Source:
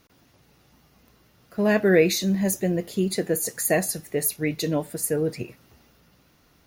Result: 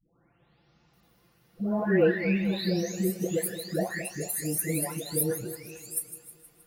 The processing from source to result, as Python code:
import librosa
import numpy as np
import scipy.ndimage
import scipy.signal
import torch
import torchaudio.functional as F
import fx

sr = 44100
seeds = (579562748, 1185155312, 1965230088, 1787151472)

y = fx.spec_delay(x, sr, highs='late', ms=934)
y = fx.peak_eq(y, sr, hz=6300.0, db=-5.0, octaves=0.4)
y = fx.echo_split(y, sr, split_hz=2900.0, low_ms=220, high_ms=157, feedback_pct=52, wet_db=-12.0)
y = y * 10.0 ** (-3.0 / 20.0)